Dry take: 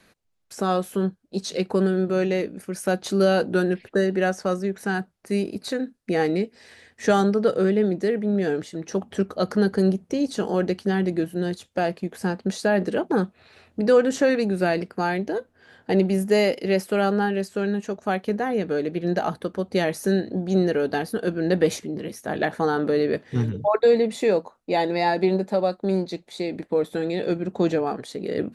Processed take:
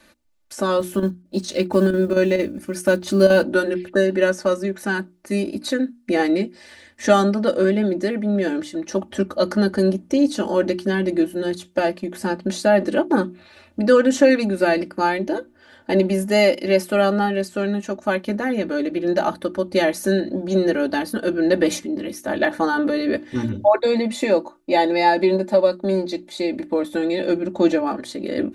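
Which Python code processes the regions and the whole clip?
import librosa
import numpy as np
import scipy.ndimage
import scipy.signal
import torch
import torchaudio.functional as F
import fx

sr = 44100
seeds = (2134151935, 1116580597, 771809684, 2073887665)

y = fx.chain(x, sr, fx.block_float(bits=7),
    fx.peak_eq(hz=81.0, db=8.5, octaves=2.1),
    fx.chopper(hz=4.4, depth_pct=60, duty_pct=85), at=(0.8, 3.44))
y = fx.hum_notches(y, sr, base_hz=60, count=6)
y = y + 0.92 * np.pad(y, (int(3.4 * sr / 1000.0), 0))[:len(y)]
y = y * librosa.db_to_amplitude(2.0)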